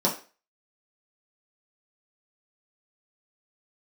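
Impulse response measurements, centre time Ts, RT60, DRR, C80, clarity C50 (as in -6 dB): 21 ms, 0.35 s, -5.5 dB, 15.0 dB, 10.5 dB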